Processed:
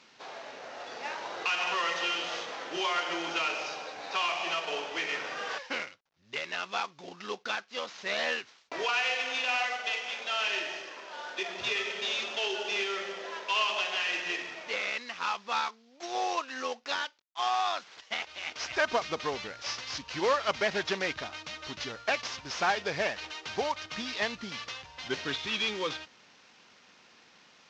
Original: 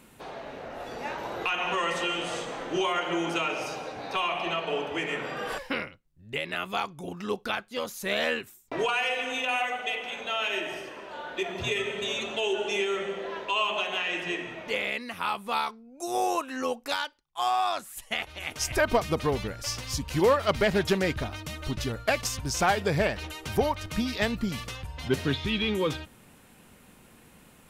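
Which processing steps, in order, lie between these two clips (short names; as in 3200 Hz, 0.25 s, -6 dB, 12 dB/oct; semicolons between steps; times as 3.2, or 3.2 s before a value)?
CVSD 32 kbps; HPF 1000 Hz 6 dB/oct; gain +1 dB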